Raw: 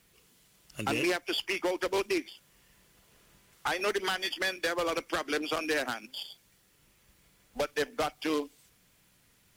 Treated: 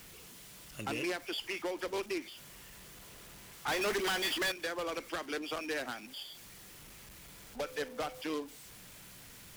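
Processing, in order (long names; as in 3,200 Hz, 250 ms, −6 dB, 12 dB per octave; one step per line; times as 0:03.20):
converter with a step at zero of −40 dBFS
0:03.68–0:04.52: leveller curve on the samples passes 3
0:07.62–0:08.21: steady tone 510 Hz −41 dBFS
level −7.5 dB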